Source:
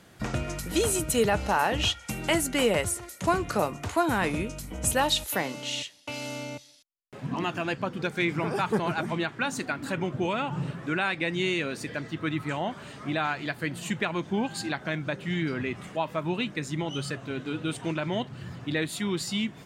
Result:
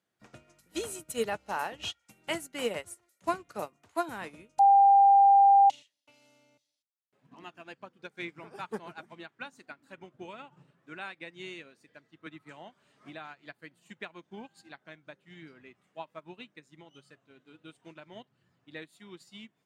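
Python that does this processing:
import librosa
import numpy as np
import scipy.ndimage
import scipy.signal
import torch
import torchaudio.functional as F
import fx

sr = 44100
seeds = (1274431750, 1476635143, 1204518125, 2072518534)

y = fx.band_squash(x, sr, depth_pct=70, at=(12.26, 13.53))
y = fx.edit(y, sr, fx.bleep(start_s=4.59, length_s=1.11, hz=795.0, db=-15.0), tone=tone)
y = fx.highpass(y, sr, hz=240.0, slope=6)
y = fx.upward_expand(y, sr, threshold_db=-37.0, expansion=2.5)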